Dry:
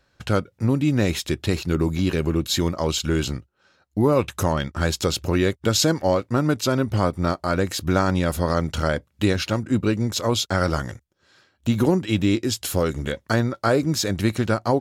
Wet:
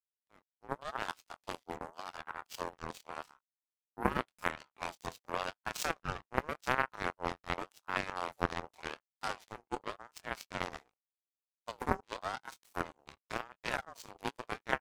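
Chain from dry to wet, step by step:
fade in at the beginning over 0.93 s
ambience of single reflections 23 ms −5 dB, 38 ms −17 dB, 69 ms −17.5 dB
power curve on the samples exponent 3
ring modulator whose carrier an LFO sweeps 890 Hz, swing 35%, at 0.88 Hz
level −2 dB

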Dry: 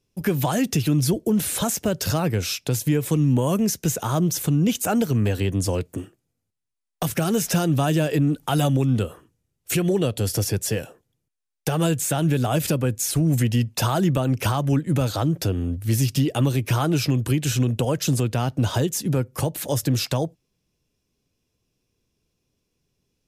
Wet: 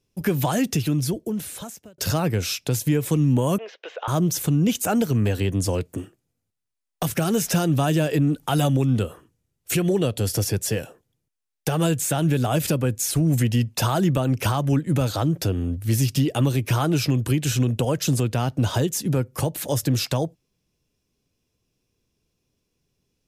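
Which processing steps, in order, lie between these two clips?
0:00.60–0:01.98: fade out
0:03.58–0:04.08: elliptic band-pass filter 510–3,300 Hz, stop band 50 dB

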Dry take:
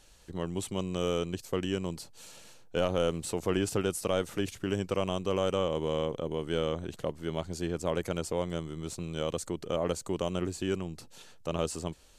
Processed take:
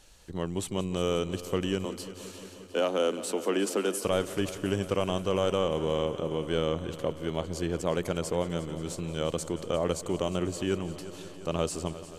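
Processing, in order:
0:01.85–0:04.05: Butterworth high-pass 200 Hz 72 dB per octave
echo machine with several playback heads 177 ms, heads first and second, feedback 72%, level −18 dB
level +2 dB

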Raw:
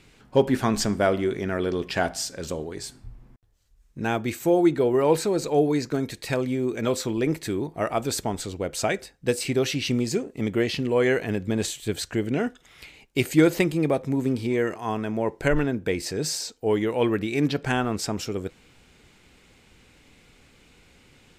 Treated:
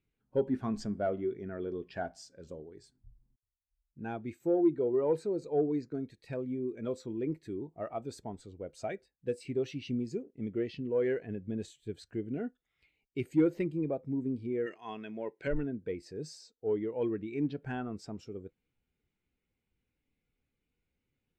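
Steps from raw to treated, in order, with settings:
high-shelf EQ 6,200 Hz −5 dB
soft clipping −13 dBFS, distortion −19 dB
0:14.66–0:15.47: meter weighting curve D
every bin expanded away from the loudest bin 1.5 to 1
level −8 dB

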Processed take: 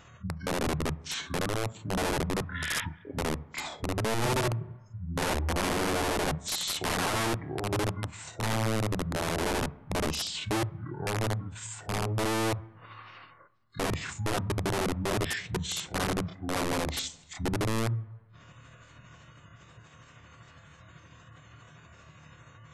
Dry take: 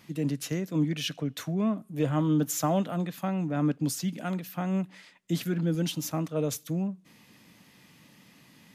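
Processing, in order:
gate on every frequency bin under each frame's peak −25 dB strong
in parallel at −2 dB: downward compressor 10 to 1, threshold −39 dBFS, peak gain reduction 17.5 dB
on the sum: time stretch by overlap-add 1.5×, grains 92 ms
wrap-around overflow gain 24 dB
on a send at −15.5 dB: convolution reverb RT60 0.65 s, pre-delay 3 ms
on the sum: wrong playback speed 78 rpm record played at 45 rpm

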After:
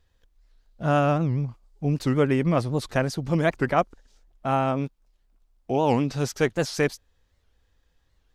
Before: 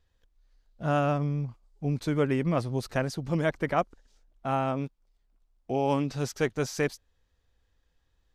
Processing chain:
wow of a warped record 78 rpm, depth 250 cents
level +4.5 dB

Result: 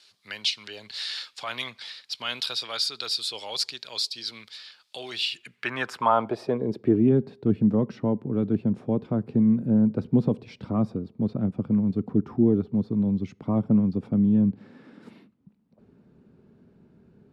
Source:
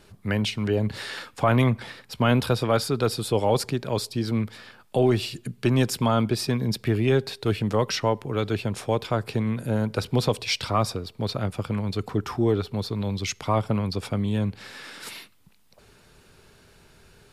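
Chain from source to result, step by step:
band-pass filter sweep 4,300 Hz → 220 Hz, 0:05.08–0:07.12
level +8.5 dB

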